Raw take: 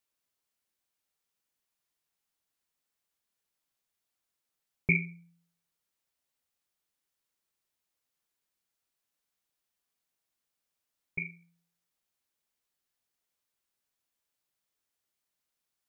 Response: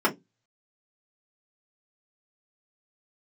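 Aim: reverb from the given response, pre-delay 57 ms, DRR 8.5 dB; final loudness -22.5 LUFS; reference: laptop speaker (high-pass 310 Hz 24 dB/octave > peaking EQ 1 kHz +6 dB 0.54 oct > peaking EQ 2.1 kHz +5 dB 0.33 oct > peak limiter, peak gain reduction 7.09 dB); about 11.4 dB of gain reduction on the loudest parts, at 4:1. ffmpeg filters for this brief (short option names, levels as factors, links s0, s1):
-filter_complex "[0:a]acompressor=threshold=0.0178:ratio=4,asplit=2[s0][s1];[1:a]atrim=start_sample=2205,adelay=57[s2];[s1][s2]afir=irnorm=-1:irlink=0,volume=0.0668[s3];[s0][s3]amix=inputs=2:normalize=0,highpass=f=310:w=0.5412,highpass=f=310:w=1.3066,equalizer=f=1000:t=o:w=0.54:g=6,equalizer=f=2100:t=o:w=0.33:g=5,volume=11.9,alimiter=limit=0.422:level=0:latency=1"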